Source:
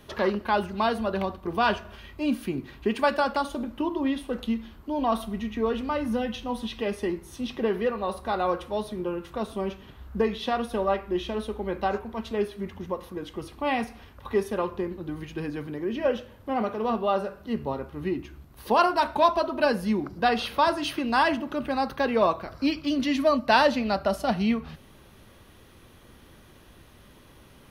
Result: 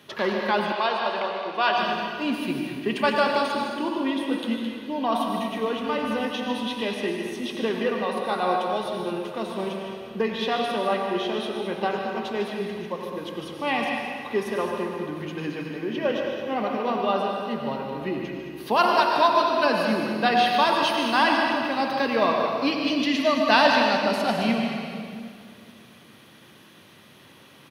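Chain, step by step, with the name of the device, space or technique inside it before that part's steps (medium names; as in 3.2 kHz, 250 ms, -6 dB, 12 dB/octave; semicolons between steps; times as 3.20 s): stadium PA (high-pass 120 Hz 24 dB/octave; peaking EQ 2.9 kHz +6 dB 1.9 oct; loudspeakers at several distances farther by 51 m -10 dB, 74 m -10 dB; reverberation RT60 2.2 s, pre-delay 84 ms, DRR 2 dB); 0.72–1.78 s: three-band isolator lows -16 dB, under 370 Hz, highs -23 dB, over 6.8 kHz; trim -1.5 dB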